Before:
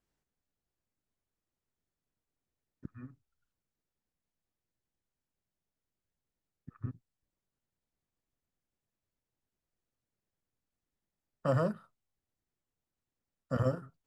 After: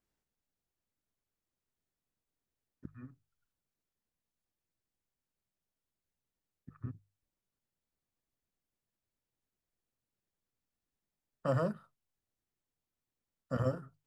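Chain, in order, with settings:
mains-hum notches 50/100/150 Hz
level −2 dB

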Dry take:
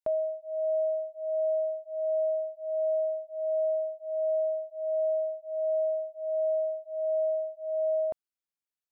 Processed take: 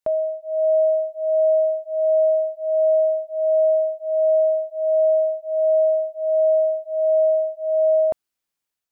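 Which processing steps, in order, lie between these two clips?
automatic gain control gain up to 4 dB
level +6.5 dB

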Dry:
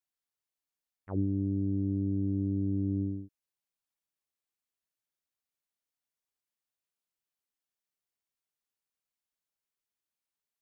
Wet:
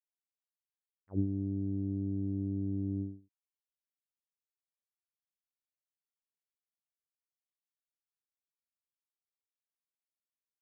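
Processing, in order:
expander for the loud parts 2.5 to 1, over −41 dBFS

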